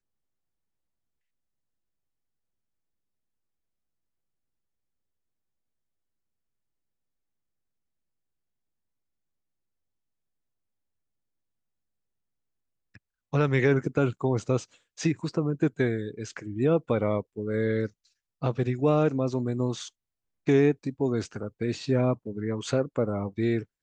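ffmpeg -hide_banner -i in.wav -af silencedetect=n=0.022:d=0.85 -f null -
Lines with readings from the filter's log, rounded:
silence_start: 0.00
silence_end: 13.33 | silence_duration: 13.33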